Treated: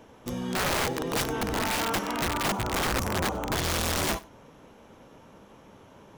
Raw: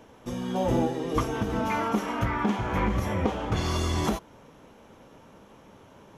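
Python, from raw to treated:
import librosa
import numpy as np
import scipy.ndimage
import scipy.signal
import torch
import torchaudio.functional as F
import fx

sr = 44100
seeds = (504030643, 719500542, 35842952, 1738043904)

y = fx.spec_box(x, sr, start_s=2.26, length_s=1.27, low_hz=1500.0, high_hz=5600.0, gain_db=-12)
y = (np.mod(10.0 ** (21.5 / 20.0) * y + 1.0, 2.0) - 1.0) / 10.0 ** (21.5 / 20.0)
y = y + 10.0 ** (-22.0 / 20.0) * np.pad(y, (int(95 * sr / 1000.0), 0))[:len(y)]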